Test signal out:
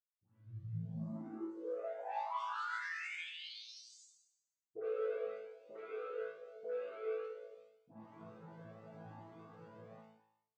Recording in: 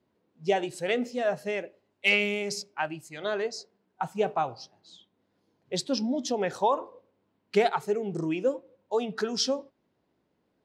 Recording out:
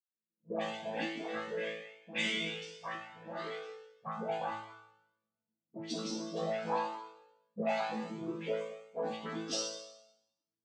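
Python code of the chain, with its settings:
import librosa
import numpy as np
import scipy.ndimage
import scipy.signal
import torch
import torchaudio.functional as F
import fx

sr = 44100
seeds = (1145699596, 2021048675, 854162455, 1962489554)

y = fx.fade_in_head(x, sr, length_s=0.54)
y = fx.env_lowpass(y, sr, base_hz=350.0, full_db=-22.5)
y = fx.dynamic_eq(y, sr, hz=420.0, q=1.4, threshold_db=-39.0, ratio=4.0, max_db=-4)
y = y + 0.52 * np.pad(y, (int(4.2 * sr / 1000.0), 0))[:len(y)]
y = fx.leveller(y, sr, passes=2)
y = fx.dispersion(y, sr, late='highs', ms=113.0, hz=1200.0)
y = fx.noise_vocoder(y, sr, seeds[0], bands=16)
y = fx.resonator_bank(y, sr, root=45, chord='fifth', decay_s=0.84)
y = y + 10.0 ** (-19.0 / 20.0) * np.pad(y, (int(216 * sr / 1000.0), 0))[:len(y)]
y = fx.comb_cascade(y, sr, direction='rising', hz=0.86)
y = y * librosa.db_to_amplitude(9.0)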